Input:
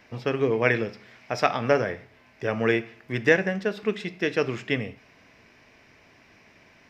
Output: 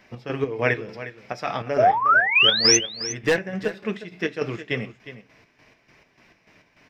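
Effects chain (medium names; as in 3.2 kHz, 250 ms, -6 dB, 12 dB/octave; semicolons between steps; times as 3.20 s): 2.52–3.39 s: overload inside the chain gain 15.5 dB; 1.78–2.77 s: painted sound rise 590–6400 Hz -16 dBFS; square tremolo 3.4 Hz, depth 60%, duty 50%; flange 0.82 Hz, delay 5.1 ms, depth 1.9 ms, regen -48%; on a send: delay 359 ms -13.5 dB; on the sum: trim +4.5 dB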